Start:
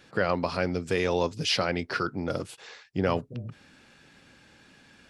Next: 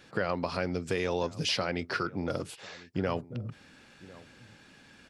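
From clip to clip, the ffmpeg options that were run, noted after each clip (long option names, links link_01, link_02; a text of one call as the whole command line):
ffmpeg -i in.wav -filter_complex "[0:a]acompressor=threshold=-29dB:ratio=2,asplit=2[link_01][link_02];[link_02]adelay=1050,volume=-20dB,highshelf=frequency=4000:gain=-23.6[link_03];[link_01][link_03]amix=inputs=2:normalize=0" out.wav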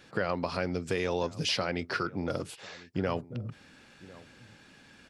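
ffmpeg -i in.wav -af anull out.wav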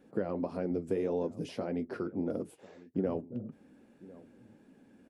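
ffmpeg -i in.wav -af "firequalizer=gain_entry='entry(130,0);entry(230,12);entry(1200,-6);entry(4400,-15);entry(9900,-1)':delay=0.05:min_phase=1,flanger=delay=4.2:depth=6.4:regen=-56:speed=1.7:shape=sinusoidal,volume=-4.5dB" out.wav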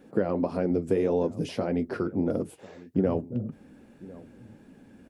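ffmpeg -i in.wav -af "asubboost=boost=2:cutoff=170,volume=7.5dB" out.wav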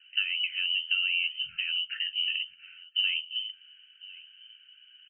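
ffmpeg -i in.wav -filter_complex "[0:a]lowpass=frequency=2700:width_type=q:width=0.5098,lowpass=frequency=2700:width_type=q:width=0.6013,lowpass=frequency=2700:width_type=q:width=0.9,lowpass=frequency=2700:width_type=q:width=2.563,afreqshift=-3200,asplit=2[link_01][link_02];[link_02]adelay=322,lowpass=frequency=1500:poles=1,volume=-22.5dB,asplit=2[link_03][link_04];[link_04]adelay=322,lowpass=frequency=1500:poles=1,volume=0.53,asplit=2[link_05][link_06];[link_06]adelay=322,lowpass=frequency=1500:poles=1,volume=0.53,asplit=2[link_07][link_08];[link_08]adelay=322,lowpass=frequency=1500:poles=1,volume=0.53[link_09];[link_01][link_03][link_05][link_07][link_09]amix=inputs=5:normalize=0,afftfilt=real='re*(1-between(b*sr/4096,210,1300))':imag='im*(1-between(b*sr/4096,210,1300))':win_size=4096:overlap=0.75,volume=-3.5dB" out.wav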